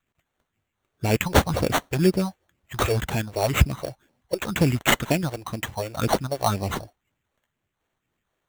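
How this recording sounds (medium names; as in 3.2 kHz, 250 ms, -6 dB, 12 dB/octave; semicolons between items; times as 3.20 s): phasing stages 4, 2 Hz, lowest notch 180–1600 Hz; aliases and images of a low sample rate 5 kHz, jitter 0%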